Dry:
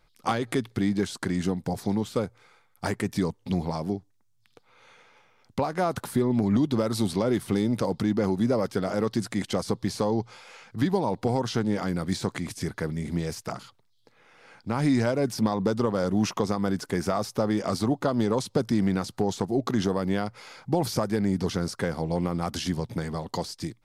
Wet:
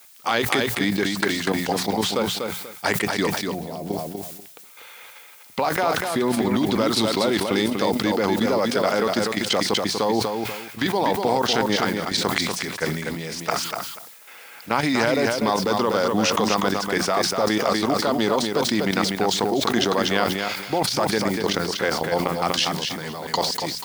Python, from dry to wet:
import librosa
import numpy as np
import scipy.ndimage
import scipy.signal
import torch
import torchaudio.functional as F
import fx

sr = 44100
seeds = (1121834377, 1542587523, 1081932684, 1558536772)

y = fx.weighting(x, sr, curve='D')
y = fx.spec_box(y, sr, start_s=3.38, length_s=0.49, low_hz=750.0, high_hz=11000.0, gain_db=-11)
y = fx.peak_eq(y, sr, hz=880.0, db=8.5, octaves=2.0)
y = fx.hum_notches(y, sr, base_hz=60, count=3)
y = fx.level_steps(y, sr, step_db=12)
y = fx.dmg_noise_colour(y, sr, seeds[0], colour='blue', level_db=-53.0)
y = fx.echo_feedback(y, sr, ms=243, feedback_pct=16, wet_db=-5.5)
y = fx.sustainer(y, sr, db_per_s=48.0)
y = y * 10.0 ** (3.0 / 20.0)